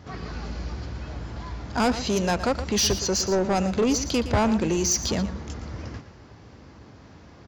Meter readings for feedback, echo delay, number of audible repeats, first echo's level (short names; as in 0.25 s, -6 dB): no steady repeat, 0.116 s, 1, -12.5 dB